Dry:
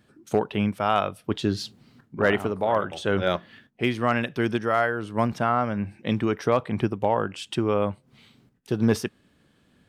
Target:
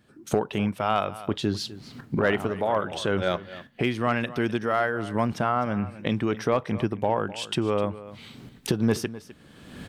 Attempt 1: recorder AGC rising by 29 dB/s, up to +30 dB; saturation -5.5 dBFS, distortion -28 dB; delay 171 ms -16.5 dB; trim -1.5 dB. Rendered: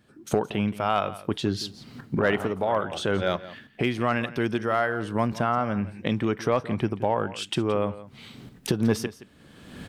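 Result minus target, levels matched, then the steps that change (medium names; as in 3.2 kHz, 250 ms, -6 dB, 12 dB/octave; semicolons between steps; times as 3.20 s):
echo 84 ms early
change: delay 255 ms -16.5 dB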